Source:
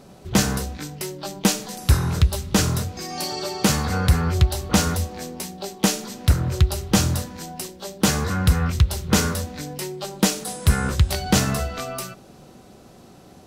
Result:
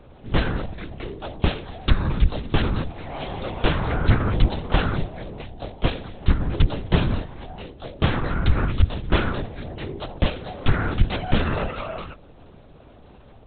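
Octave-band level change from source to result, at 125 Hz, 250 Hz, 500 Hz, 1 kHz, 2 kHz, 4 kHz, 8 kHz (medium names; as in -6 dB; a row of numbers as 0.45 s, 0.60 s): -2.0 dB, -3.5 dB, -0.5 dB, -1.5 dB, -1.0 dB, -5.5 dB, under -40 dB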